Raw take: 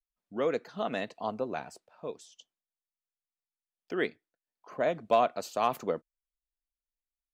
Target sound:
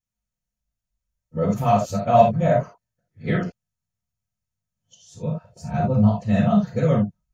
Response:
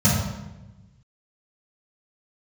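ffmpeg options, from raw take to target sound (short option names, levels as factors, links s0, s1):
-filter_complex "[0:a]areverse,asubboost=boost=7:cutoff=97[s0];[1:a]atrim=start_sample=2205,atrim=end_sample=3969[s1];[s0][s1]afir=irnorm=-1:irlink=0,volume=0.316"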